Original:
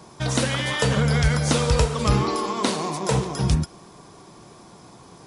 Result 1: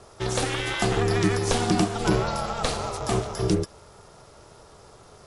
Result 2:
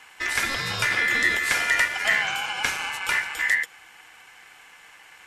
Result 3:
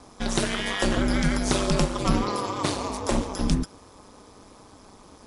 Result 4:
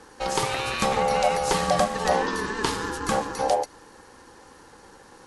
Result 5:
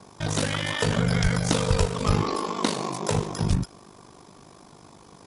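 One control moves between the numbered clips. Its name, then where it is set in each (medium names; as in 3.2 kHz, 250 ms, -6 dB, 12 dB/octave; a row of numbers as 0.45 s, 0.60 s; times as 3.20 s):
ring modulator, frequency: 250 Hz, 1.9 kHz, 99 Hz, 660 Hz, 25 Hz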